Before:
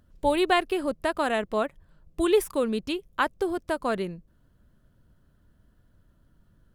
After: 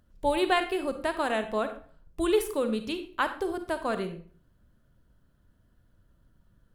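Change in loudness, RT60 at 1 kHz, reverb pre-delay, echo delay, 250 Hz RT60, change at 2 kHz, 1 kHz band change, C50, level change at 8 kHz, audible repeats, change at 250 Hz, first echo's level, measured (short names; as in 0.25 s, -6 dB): -2.5 dB, 0.45 s, 36 ms, none, 0.50 s, -2.0 dB, -2.0 dB, 10.0 dB, -2.0 dB, none, -2.5 dB, none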